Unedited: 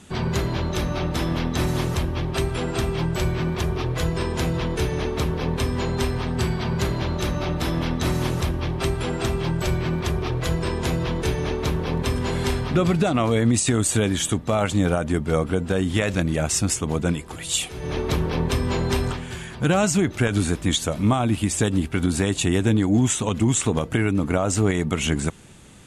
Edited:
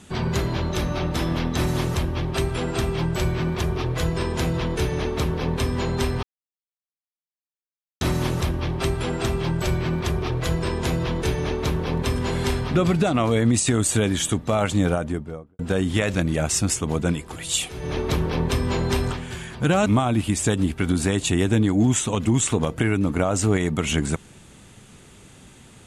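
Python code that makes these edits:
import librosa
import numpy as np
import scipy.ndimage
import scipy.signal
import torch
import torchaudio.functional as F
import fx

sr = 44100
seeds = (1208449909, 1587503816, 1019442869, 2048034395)

y = fx.studio_fade_out(x, sr, start_s=14.81, length_s=0.78)
y = fx.edit(y, sr, fx.silence(start_s=6.23, length_s=1.78),
    fx.cut(start_s=19.86, length_s=1.14), tone=tone)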